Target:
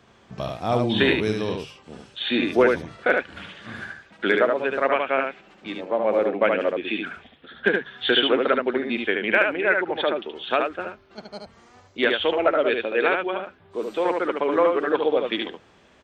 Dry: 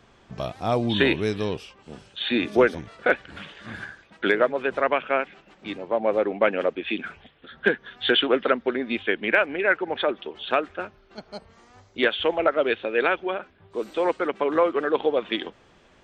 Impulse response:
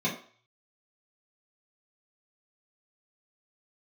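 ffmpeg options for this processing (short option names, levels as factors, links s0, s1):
-af "highpass=53,bandreject=f=50:t=h:w=6,bandreject=f=100:t=h:w=6,bandreject=f=150:t=h:w=6,aecho=1:1:74:0.631"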